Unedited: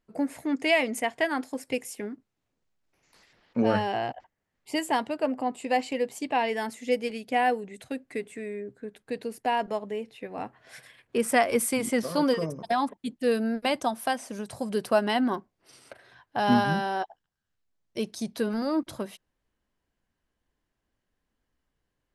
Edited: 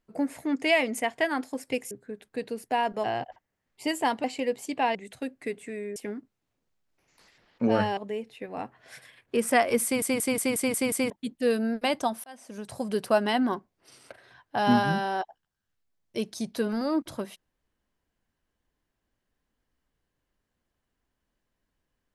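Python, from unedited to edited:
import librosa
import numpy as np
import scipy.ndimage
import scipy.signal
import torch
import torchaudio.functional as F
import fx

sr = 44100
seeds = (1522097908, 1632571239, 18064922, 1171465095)

y = fx.edit(x, sr, fx.swap(start_s=1.91, length_s=2.01, other_s=8.65, other_length_s=1.13),
    fx.cut(start_s=5.12, length_s=0.65),
    fx.cut(start_s=6.48, length_s=1.16),
    fx.stutter_over(start_s=11.65, slice_s=0.18, count=7),
    fx.fade_in_span(start_s=14.05, length_s=0.51), tone=tone)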